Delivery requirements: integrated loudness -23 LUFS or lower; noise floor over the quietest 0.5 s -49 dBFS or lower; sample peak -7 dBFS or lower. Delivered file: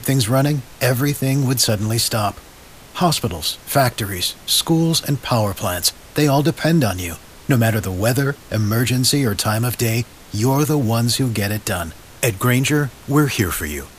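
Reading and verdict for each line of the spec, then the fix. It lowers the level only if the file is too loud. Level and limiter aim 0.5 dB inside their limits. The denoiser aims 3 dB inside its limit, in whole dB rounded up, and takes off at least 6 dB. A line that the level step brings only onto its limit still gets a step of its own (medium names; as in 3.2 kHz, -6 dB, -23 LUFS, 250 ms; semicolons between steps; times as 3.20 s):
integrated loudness -18.5 LUFS: fail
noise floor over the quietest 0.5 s -42 dBFS: fail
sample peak -2.5 dBFS: fail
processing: noise reduction 6 dB, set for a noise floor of -42 dBFS; trim -5 dB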